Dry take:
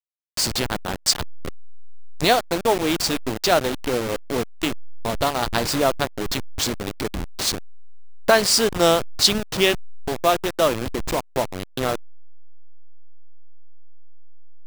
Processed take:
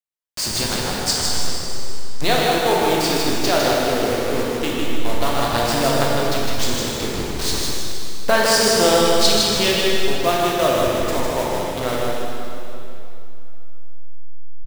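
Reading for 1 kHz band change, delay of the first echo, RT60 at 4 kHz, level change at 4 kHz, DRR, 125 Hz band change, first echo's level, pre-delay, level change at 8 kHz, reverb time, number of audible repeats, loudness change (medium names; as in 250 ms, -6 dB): +3.5 dB, 156 ms, 2.7 s, +3.0 dB, -5.0 dB, +4.0 dB, -3.5 dB, 9 ms, +3.0 dB, 2.9 s, 1, +2.5 dB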